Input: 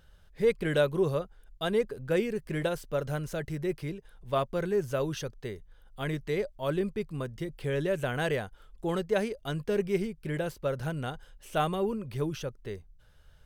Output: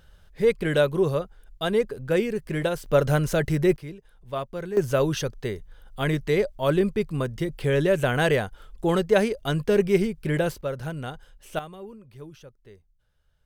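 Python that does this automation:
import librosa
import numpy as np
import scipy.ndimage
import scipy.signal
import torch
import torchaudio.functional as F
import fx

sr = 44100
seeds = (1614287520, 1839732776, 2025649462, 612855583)

y = fx.gain(x, sr, db=fx.steps((0.0, 4.5), (2.86, 11.0), (3.76, -2.0), (4.77, 8.0), (10.61, 1.0), (11.59, -11.0)))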